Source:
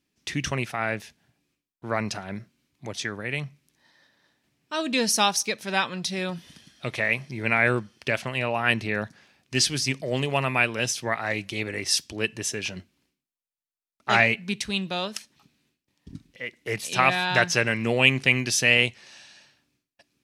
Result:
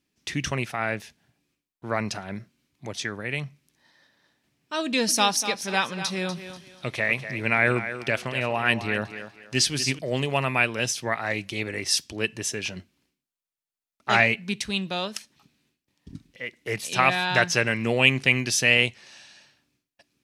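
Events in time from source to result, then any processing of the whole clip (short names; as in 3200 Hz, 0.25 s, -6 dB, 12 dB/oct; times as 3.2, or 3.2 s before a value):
4.84–9.99 thinning echo 0.243 s, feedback 29%, high-pass 190 Hz, level -10.5 dB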